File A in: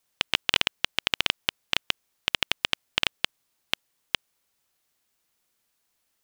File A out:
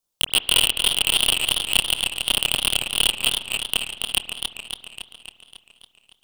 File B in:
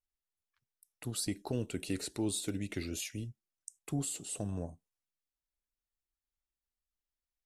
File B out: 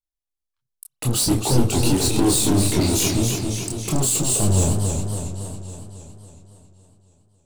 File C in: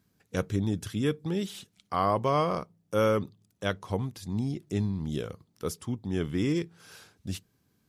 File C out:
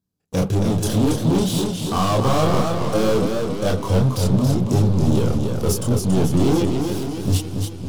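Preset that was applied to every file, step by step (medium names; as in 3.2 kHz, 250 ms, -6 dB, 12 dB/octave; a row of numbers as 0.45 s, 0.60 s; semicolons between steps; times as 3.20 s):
waveshaping leveller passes 5; chorus voices 4, 0.55 Hz, delay 27 ms, depth 4.9 ms; bass shelf 130 Hz +3.5 dB; spring tank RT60 1.6 s, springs 53 ms, chirp 45 ms, DRR 19 dB; hard clipper -15.5 dBFS; peaking EQ 1.9 kHz -10.5 dB 1.1 oct; modulated delay 277 ms, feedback 61%, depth 119 cents, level -5 dB; normalise loudness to -20 LUFS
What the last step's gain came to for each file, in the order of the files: +9.5 dB, +9.5 dB, +2.5 dB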